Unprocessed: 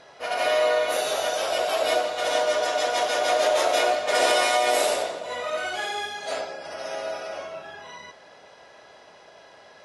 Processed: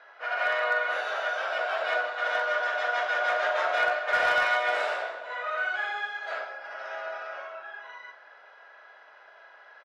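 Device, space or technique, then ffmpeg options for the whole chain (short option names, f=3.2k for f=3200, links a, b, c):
megaphone: -filter_complex "[0:a]highpass=680,lowpass=2.6k,equalizer=f=1.5k:t=o:w=0.56:g=11,asoftclip=type=hard:threshold=-13dB,asplit=2[a][b];[b]adelay=43,volume=-10.5dB[c];[a][c]amix=inputs=2:normalize=0,volume=-4.5dB"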